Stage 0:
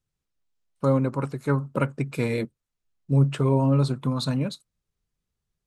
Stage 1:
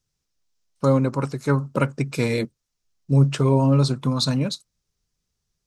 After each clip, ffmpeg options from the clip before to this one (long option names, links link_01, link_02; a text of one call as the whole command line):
ffmpeg -i in.wav -af "equalizer=frequency=5600:width_type=o:width=0.87:gain=10.5,volume=3dB" out.wav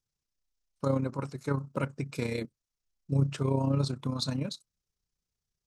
ffmpeg -i in.wav -af "tremolo=f=31:d=0.571,volume=-7.5dB" out.wav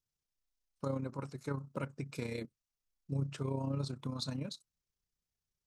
ffmpeg -i in.wav -af "acompressor=threshold=-34dB:ratio=1.5,volume=-4.5dB" out.wav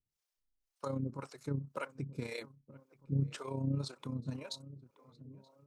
ffmpeg -i in.wav -filter_complex "[0:a]asplit=2[link_01][link_02];[link_02]adelay=927,lowpass=frequency=1500:poles=1,volume=-17dB,asplit=2[link_03][link_04];[link_04]adelay=927,lowpass=frequency=1500:poles=1,volume=0.55,asplit=2[link_05][link_06];[link_06]adelay=927,lowpass=frequency=1500:poles=1,volume=0.55,asplit=2[link_07][link_08];[link_08]adelay=927,lowpass=frequency=1500:poles=1,volume=0.55,asplit=2[link_09][link_10];[link_10]adelay=927,lowpass=frequency=1500:poles=1,volume=0.55[link_11];[link_01][link_03][link_05][link_07][link_09][link_11]amix=inputs=6:normalize=0,acrossover=split=440[link_12][link_13];[link_12]aeval=exprs='val(0)*(1-1/2+1/2*cos(2*PI*1.9*n/s))':channel_layout=same[link_14];[link_13]aeval=exprs='val(0)*(1-1/2-1/2*cos(2*PI*1.9*n/s))':channel_layout=same[link_15];[link_14][link_15]amix=inputs=2:normalize=0,volume=4dB" out.wav